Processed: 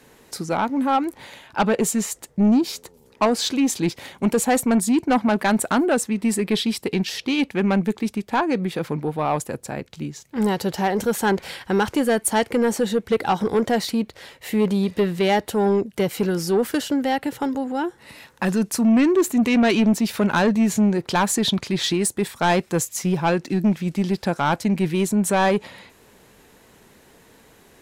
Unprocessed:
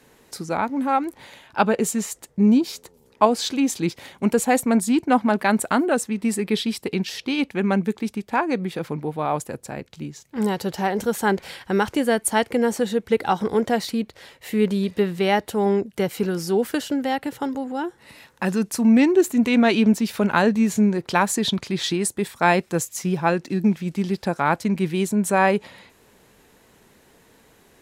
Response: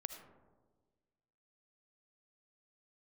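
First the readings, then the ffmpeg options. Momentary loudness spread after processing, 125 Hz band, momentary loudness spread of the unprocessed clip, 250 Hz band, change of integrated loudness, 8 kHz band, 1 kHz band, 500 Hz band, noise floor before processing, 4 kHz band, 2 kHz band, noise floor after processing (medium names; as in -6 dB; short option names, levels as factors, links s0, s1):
8 LU, +1.5 dB, 10 LU, +0.5 dB, +0.5 dB, +2.5 dB, -0.5 dB, +0.5 dB, -57 dBFS, +2.0 dB, -0.5 dB, -54 dBFS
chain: -af "asoftclip=type=tanh:threshold=0.178,volume=1.41"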